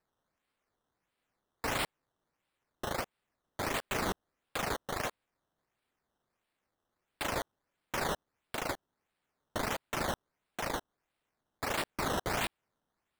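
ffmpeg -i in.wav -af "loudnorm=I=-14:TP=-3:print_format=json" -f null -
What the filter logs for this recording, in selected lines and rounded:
"input_i" : "-36.4",
"input_tp" : "-24.7",
"input_lra" : "4.0",
"input_thresh" : "-46.6",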